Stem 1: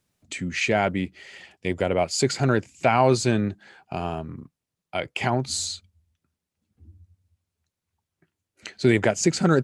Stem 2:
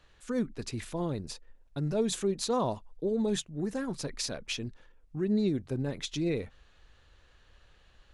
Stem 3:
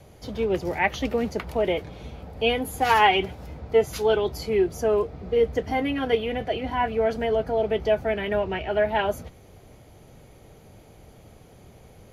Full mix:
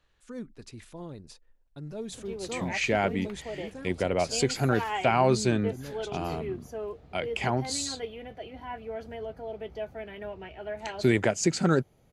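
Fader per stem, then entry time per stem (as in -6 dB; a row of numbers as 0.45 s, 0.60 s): -4.0 dB, -8.5 dB, -14.0 dB; 2.20 s, 0.00 s, 1.90 s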